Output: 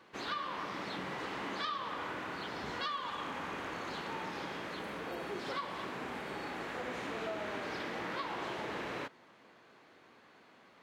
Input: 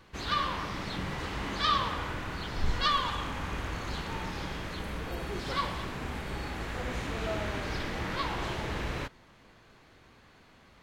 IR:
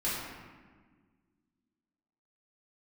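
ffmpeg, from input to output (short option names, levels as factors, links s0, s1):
-af "highpass=260,highshelf=f=3600:g=-8,acompressor=threshold=0.0178:ratio=6"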